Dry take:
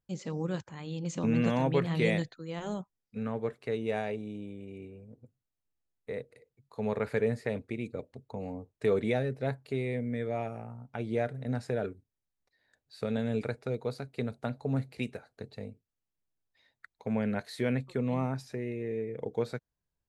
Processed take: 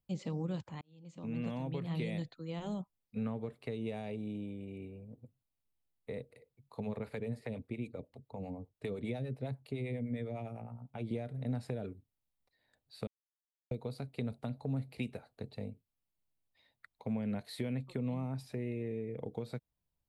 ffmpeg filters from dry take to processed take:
-filter_complex "[0:a]asettb=1/sr,asplit=3[s0][s1][s2];[s0]atrim=end=6.804[s3];[s1]atrim=start=6.8:end=11.11,asetpts=PTS-STARTPTS,afade=t=in:d=0.004:c=qsin,afade=t=out:st=4.306:d=0.004:c=qsin,acrossover=split=460[s4][s5];[s4]aeval=exprs='val(0)*(1-0.7/2+0.7/2*cos(2*PI*9.9*n/s))':c=same[s6];[s5]aeval=exprs='val(0)*(1-0.7/2-0.7/2*cos(2*PI*9.9*n/s))':c=same[s7];[s6][s7]amix=inputs=2:normalize=0[s8];[s2]atrim=start=11.106[s9];[s3][s8]acrossfade=d=0.004:c1=hsin:c2=qsin[s10];[s10][s9]acrossfade=d=0.004:c1=qsin:c2=hsin,asplit=4[s11][s12][s13][s14];[s11]atrim=end=0.81,asetpts=PTS-STARTPTS,afade=t=out:st=0.806:d=0.004:c=hsin[s15];[s12]atrim=start=0.81:end=13.07,asetpts=PTS-STARTPTS,afade=t=in:d=1.88,afade=t=out:st=12.256:d=0.004:c=hsin[s16];[s13]atrim=start=13.07:end=13.71,asetpts=PTS-STARTPTS,volume=0[s17];[s14]atrim=start=13.71,asetpts=PTS-STARTPTS,afade=t=in:d=0.004:c=hsin[s18];[s15][s16][s17][s18]concat=n=4:v=0:a=1,acompressor=threshold=0.0282:ratio=6,equalizer=f=400:t=o:w=0.67:g=-4,equalizer=f=1600:t=o:w=0.67:g=-8,equalizer=f=6300:t=o:w=0.67:g=-10,acrossover=split=370|3000[s19][s20][s21];[s20]acompressor=threshold=0.00631:ratio=6[s22];[s19][s22][s21]amix=inputs=3:normalize=0,volume=1.12"

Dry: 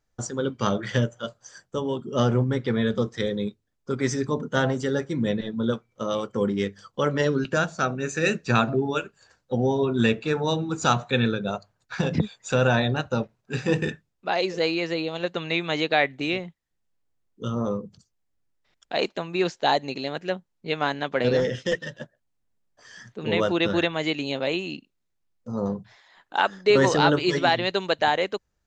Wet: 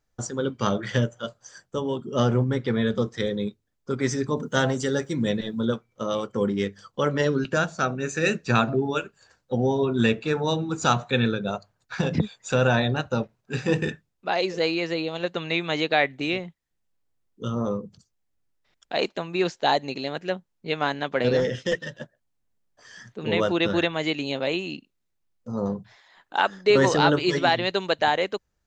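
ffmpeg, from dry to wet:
-filter_complex "[0:a]asettb=1/sr,asplit=3[s0][s1][s2];[s0]atrim=end=4.374[s3];[s1]atrim=start=4.37:end=5.66,asetpts=PTS-STARTPTS,afade=t=in:d=0.004:c=qsin,afade=t=out:st=1.286:d=0.004:c=qsin,aemphasis=mode=production:type=50kf[s4];[s2]atrim=start=5.656[s5];[s3][s4]acrossfade=d=0.004:c1=hsin:c2=qsin[s6];[s6][s5]acrossfade=d=0.004:c1=qsin:c2=hsin"

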